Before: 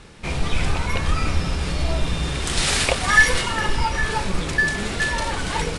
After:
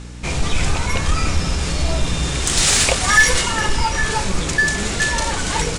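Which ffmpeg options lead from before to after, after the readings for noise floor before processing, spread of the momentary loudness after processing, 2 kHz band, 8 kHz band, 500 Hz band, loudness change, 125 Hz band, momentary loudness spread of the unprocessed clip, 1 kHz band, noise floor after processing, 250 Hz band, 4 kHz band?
−28 dBFS, 8 LU, +2.0 dB, +9.5 dB, +2.5 dB, +3.5 dB, +3.0 dB, 9 LU, +2.5 dB, −25 dBFS, +3.0 dB, +4.5 dB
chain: -af "aeval=exprs='val(0)+0.0158*(sin(2*PI*60*n/s)+sin(2*PI*2*60*n/s)/2+sin(2*PI*3*60*n/s)/3+sin(2*PI*4*60*n/s)/4+sin(2*PI*5*60*n/s)/5)':channel_layout=same,equalizer=frequency=7000:width_type=o:width=0.84:gain=9,aeval=exprs='0.891*(cos(1*acos(clip(val(0)/0.891,-1,1)))-cos(1*PI/2))+0.0708*(cos(5*acos(clip(val(0)/0.891,-1,1)))-cos(5*PI/2))':channel_layout=same"

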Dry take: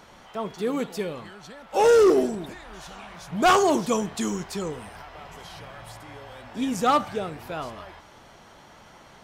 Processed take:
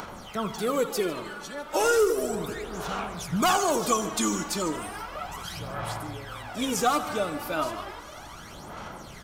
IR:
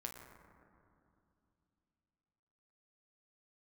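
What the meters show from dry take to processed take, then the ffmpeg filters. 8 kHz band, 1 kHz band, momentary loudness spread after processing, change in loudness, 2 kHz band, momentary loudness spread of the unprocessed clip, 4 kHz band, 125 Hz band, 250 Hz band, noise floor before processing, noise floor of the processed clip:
+5.0 dB, −2.0 dB, 17 LU, −4.5 dB, 0.0 dB, 24 LU, +1.5 dB, +1.0 dB, −3.0 dB, −51 dBFS, −44 dBFS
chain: -filter_complex "[0:a]aphaser=in_gain=1:out_gain=1:delay=3.5:decay=0.65:speed=0.34:type=sinusoidal,asplit=2[link_01][link_02];[1:a]atrim=start_sample=2205,lowpass=2800[link_03];[link_02][link_03]afir=irnorm=-1:irlink=0,volume=-10dB[link_04];[link_01][link_04]amix=inputs=2:normalize=0,acrossover=split=90|7000[link_05][link_06][link_07];[link_05]acompressor=threshold=-46dB:ratio=4[link_08];[link_06]acompressor=threshold=-22dB:ratio=4[link_09];[link_07]acompressor=threshold=-42dB:ratio=4[link_10];[link_08][link_09][link_10]amix=inputs=3:normalize=0,aemphasis=mode=production:type=cd,acompressor=mode=upward:threshold=-38dB:ratio=2.5,equalizer=frequency=1300:width_type=o:width=0.43:gain=5,bandreject=frequency=1800:width=19,aecho=1:1:82|149:0.126|0.141"

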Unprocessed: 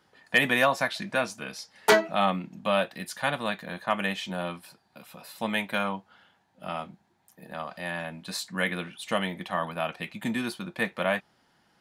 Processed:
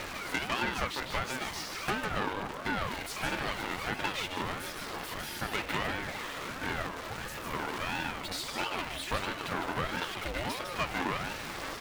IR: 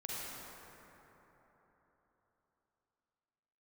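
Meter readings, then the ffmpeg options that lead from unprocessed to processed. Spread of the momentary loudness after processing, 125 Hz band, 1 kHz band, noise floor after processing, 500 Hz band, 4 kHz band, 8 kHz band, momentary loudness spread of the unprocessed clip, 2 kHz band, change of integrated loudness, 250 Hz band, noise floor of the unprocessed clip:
5 LU, −2.5 dB, −3.5 dB, −41 dBFS, −9.0 dB, −2.0 dB, −1.0 dB, 15 LU, −5.0 dB, −5.5 dB, −6.0 dB, −68 dBFS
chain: -af "aeval=exprs='val(0)+0.5*0.0398*sgn(val(0))':channel_layout=same,highpass=frequency=280:width=0.5412,highpass=frequency=280:width=1.3066,highshelf=frequency=4400:gain=-8.5,acompressor=threshold=-25dB:ratio=6,aphaser=in_gain=1:out_gain=1:delay=3.1:decay=0.25:speed=1.2:type=sinusoidal,aecho=1:1:153:0.531,aeval=exprs='(tanh(17.8*val(0)+0.8)-tanh(0.8))/17.8':channel_layout=same,aeval=exprs='val(0)*sin(2*PI*590*n/s+590*0.55/1.5*sin(2*PI*1.5*n/s))':channel_layout=same,volume=3dB"

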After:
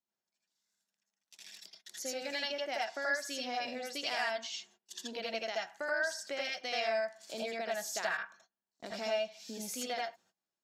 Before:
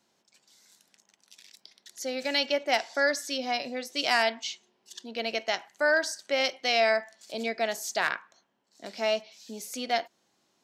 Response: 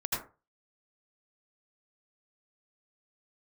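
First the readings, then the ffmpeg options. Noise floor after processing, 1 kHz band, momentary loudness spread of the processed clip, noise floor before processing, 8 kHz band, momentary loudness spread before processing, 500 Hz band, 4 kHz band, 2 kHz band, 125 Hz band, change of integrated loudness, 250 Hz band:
below −85 dBFS, −8.0 dB, 12 LU, −73 dBFS, −4.0 dB, 15 LU, −8.0 dB, −8.0 dB, −7.5 dB, can't be measured, −8.0 dB, −8.5 dB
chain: -filter_complex "[0:a]agate=range=-26dB:threshold=-54dB:ratio=16:detection=peak,acompressor=threshold=-41dB:ratio=2.5[link_01];[1:a]atrim=start_sample=2205,atrim=end_sample=3969[link_02];[link_01][link_02]afir=irnorm=-1:irlink=0"

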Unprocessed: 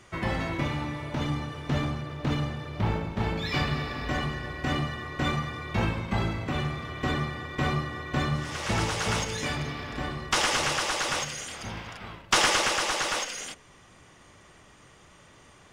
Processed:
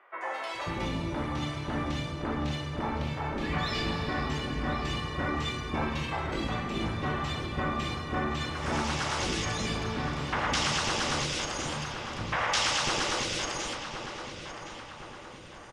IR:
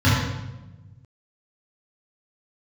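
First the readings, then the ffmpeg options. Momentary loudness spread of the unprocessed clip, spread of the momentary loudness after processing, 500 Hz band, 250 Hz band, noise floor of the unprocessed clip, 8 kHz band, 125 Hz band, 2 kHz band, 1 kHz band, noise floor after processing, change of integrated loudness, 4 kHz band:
10 LU, 10 LU, −1.0 dB, −1.0 dB, −55 dBFS, −3.5 dB, −4.0 dB, −2.5 dB, −1.0 dB, −45 dBFS, −2.5 dB, −1.5 dB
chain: -filter_complex "[0:a]lowpass=11000,afftfilt=real='re*lt(hypot(re,im),0.251)':imag='im*lt(hypot(re,im),0.251)':win_size=1024:overlap=0.75,acrossover=split=510|2100[link_01][link_02][link_03];[link_03]adelay=210[link_04];[link_01]adelay=540[link_05];[link_05][link_02][link_04]amix=inputs=3:normalize=0,asplit=2[link_06][link_07];[link_07]alimiter=limit=-22.5dB:level=0:latency=1,volume=-2dB[link_08];[link_06][link_08]amix=inputs=2:normalize=0,acrossover=split=7400[link_09][link_10];[link_10]acompressor=threshold=-48dB:ratio=4:attack=1:release=60[link_11];[link_09][link_11]amix=inputs=2:normalize=0,asplit=2[link_12][link_13];[link_13]adelay=1065,lowpass=frequency=3000:poles=1,volume=-8dB,asplit=2[link_14][link_15];[link_15]adelay=1065,lowpass=frequency=3000:poles=1,volume=0.52,asplit=2[link_16][link_17];[link_17]adelay=1065,lowpass=frequency=3000:poles=1,volume=0.52,asplit=2[link_18][link_19];[link_19]adelay=1065,lowpass=frequency=3000:poles=1,volume=0.52,asplit=2[link_20][link_21];[link_21]adelay=1065,lowpass=frequency=3000:poles=1,volume=0.52,asplit=2[link_22][link_23];[link_23]adelay=1065,lowpass=frequency=3000:poles=1,volume=0.52[link_24];[link_14][link_16][link_18][link_20][link_22][link_24]amix=inputs=6:normalize=0[link_25];[link_12][link_25]amix=inputs=2:normalize=0,volume=-4dB"

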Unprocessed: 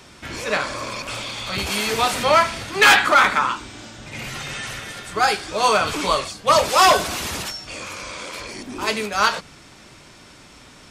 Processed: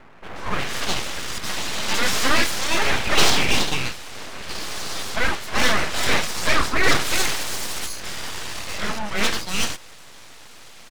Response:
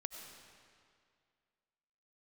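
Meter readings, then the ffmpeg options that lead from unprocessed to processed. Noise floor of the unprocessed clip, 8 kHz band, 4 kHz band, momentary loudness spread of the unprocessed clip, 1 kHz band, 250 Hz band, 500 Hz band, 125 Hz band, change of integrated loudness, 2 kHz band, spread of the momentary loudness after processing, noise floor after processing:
−46 dBFS, +2.0 dB, +0.5 dB, 18 LU, −8.0 dB, +1.5 dB, −6.0 dB, +2.5 dB, −3.5 dB, −2.5 dB, 12 LU, −43 dBFS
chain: -filter_complex "[0:a]asplit=2[link_01][link_02];[link_02]highpass=frequency=720:poles=1,volume=14dB,asoftclip=type=tanh:threshold=-4.5dB[link_03];[link_01][link_03]amix=inputs=2:normalize=0,lowpass=frequency=3000:poles=1,volume=-6dB,acrossover=split=1300[link_04][link_05];[link_05]adelay=360[link_06];[link_04][link_06]amix=inputs=2:normalize=0,aeval=exprs='abs(val(0))':channel_layout=same"

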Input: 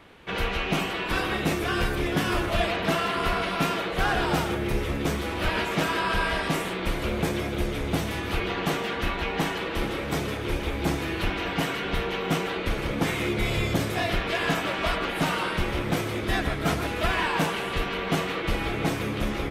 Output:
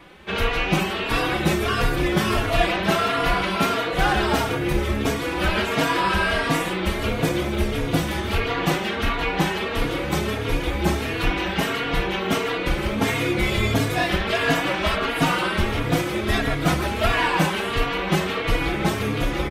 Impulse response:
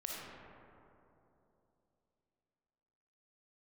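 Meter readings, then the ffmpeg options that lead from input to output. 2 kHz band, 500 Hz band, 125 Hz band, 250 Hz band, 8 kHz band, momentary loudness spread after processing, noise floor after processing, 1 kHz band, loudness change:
+4.5 dB, +4.5 dB, +4.5 dB, +4.5 dB, +4.5 dB, 4 LU, −27 dBFS, +4.5 dB, +4.5 dB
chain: -filter_complex "[0:a]asplit=2[link_01][link_02];[link_02]adelay=3.6,afreqshift=1.5[link_03];[link_01][link_03]amix=inputs=2:normalize=1,volume=7.5dB"

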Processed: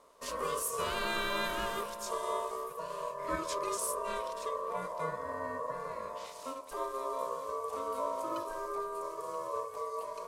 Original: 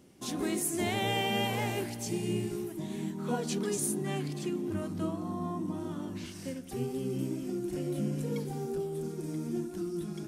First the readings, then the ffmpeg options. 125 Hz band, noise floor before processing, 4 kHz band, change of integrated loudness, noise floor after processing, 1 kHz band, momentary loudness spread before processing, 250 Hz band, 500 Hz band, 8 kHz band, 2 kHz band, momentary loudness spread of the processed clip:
−18.0 dB, −43 dBFS, −3.5 dB, −2.5 dB, −46 dBFS, +5.0 dB, 7 LU, −15.5 dB, −1.0 dB, −3.5 dB, +0.5 dB, 7 LU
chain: -af "bandreject=frequency=690:width=13,aeval=exprs='val(0)*sin(2*PI*800*n/s)':channel_layout=same"

